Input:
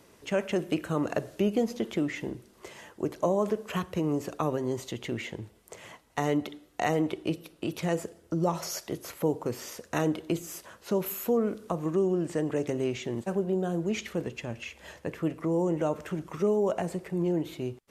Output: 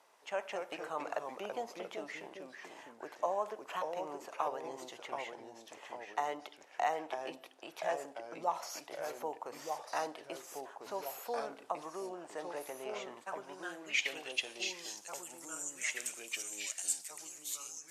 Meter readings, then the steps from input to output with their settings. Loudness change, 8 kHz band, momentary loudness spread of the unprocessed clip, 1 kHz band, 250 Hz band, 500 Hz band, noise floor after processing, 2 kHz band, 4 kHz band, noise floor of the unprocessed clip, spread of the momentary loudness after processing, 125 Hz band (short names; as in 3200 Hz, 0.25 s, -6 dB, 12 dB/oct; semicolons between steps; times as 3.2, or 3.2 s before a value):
-9.0 dB, +2.0 dB, 12 LU, -2.0 dB, -22.0 dB, -11.5 dB, -59 dBFS, -1.5 dB, -1.0 dB, -60 dBFS, 11 LU, -30.5 dB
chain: pre-emphasis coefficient 0.97; band-pass sweep 800 Hz -> 7500 Hz, 12.95–15.24; echoes that change speed 0.19 s, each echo -2 st, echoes 2, each echo -6 dB; gain +18 dB